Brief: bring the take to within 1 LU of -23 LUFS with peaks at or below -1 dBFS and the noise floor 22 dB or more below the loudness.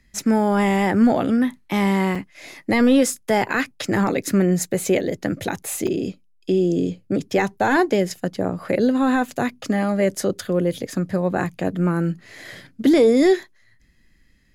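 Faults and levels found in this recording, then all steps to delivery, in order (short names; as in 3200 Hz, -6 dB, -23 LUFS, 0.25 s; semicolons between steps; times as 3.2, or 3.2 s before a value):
dropouts 2; longest dropout 4.8 ms; loudness -20.5 LUFS; peak -7.5 dBFS; loudness target -23.0 LUFS
-> interpolate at 2.15/5.87, 4.8 ms; gain -2.5 dB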